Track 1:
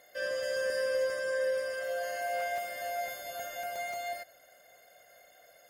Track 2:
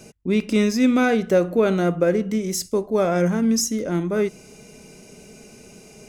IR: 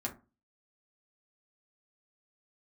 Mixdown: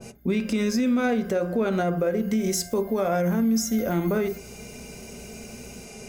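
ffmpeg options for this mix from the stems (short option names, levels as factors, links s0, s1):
-filter_complex "[0:a]aexciter=amount=13:drive=3.4:freq=12000,equalizer=f=1300:w=2:g=6.5,aeval=exprs='val(0)+0.01*(sin(2*PI*60*n/s)+sin(2*PI*2*60*n/s)/2+sin(2*PI*3*60*n/s)/3+sin(2*PI*4*60*n/s)/4+sin(2*PI*5*60*n/s)/5)':c=same,adelay=150,volume=0.355,afade=t=in:st=3.24:d=0.2:silence=0.473151[s0];[1:a]equalizer=f=290:t=o:w=0.68:g=-6.5,alimiter=limit=0.15:level=0:latency=1:release=447,adynamicequalizer=threshold=0.0126:dfrequency=1600:dqfactor=0.7:tfrequency=1600:tqfactor=0.7:attack=5:release=100:ratio=0.375:range=2:mode=cutabove:tftype=highshelf,volume=1.12,asplit=2[s1][s2];[s2]volume=0.631[s3];[2:a]atrim=start_sample=2205[s4];[s3][s4]afir=irnorm=-1:irlink=0[s5];[s0][s1][s5]amix=inputs=3:normalize=0,alimiter=limit=0.158:level=0:latency=1:release=91"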